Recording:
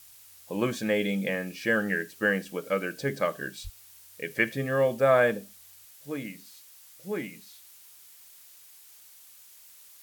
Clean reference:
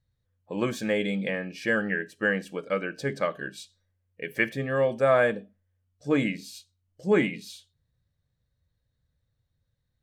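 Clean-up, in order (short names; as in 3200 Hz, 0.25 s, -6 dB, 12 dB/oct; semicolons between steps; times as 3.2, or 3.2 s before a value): 3.63–3.75 HPF 140 Hz 24 dB/oct; noise print and reduce 24 dB; 5.85 gain correction +11 dB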